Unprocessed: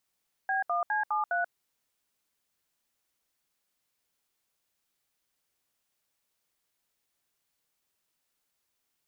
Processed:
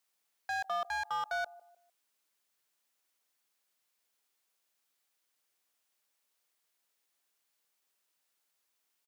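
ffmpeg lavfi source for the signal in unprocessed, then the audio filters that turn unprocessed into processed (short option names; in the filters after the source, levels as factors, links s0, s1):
-f lavfi -i "aevalsrc='0.0376*clip(min(mod(t,0.205),0.135-mod(t,0.205))/0.002,0,1)*(eq(floor(t/0.205),0)*(sin(2*PI*770*mod(t,0.205))+sin(2*PI*1633*mod(t,0.205)))+eq(floor(t/0.205),1)*(sin(2*PI*697*mod(t,0.205))+sin(2*PI*1209*mod(t,0.205)))+eq(floor(t/0.205),2)*(sin(2*PI*852*mod(t,0.205))+sin(2*PI*1633*mod(t,0.205)))+eq(floor(t/0.205),3)*(sin(2*PI*852*mod(t,0.205))+sin(2*PI*1209*mod(t,0.205)))+eq(floor(t/0.205),4)*(sin(2*PI*697*mod(t,0.205))+sin(2*PI*1477*mod(t,0.205))))':d=1.025:s=44100"
-filter_complex "[0:a]highpass=f=430:p=1,acrossover=split=730[s0][s1];[s0]aecho=1:1:151|302|453:0.178|0.0622|0.0218[s2];[s1]asoftclip=type=hard:threshold=0.0158[s3];[s2][s3]amix=inputs=2:normalize=0"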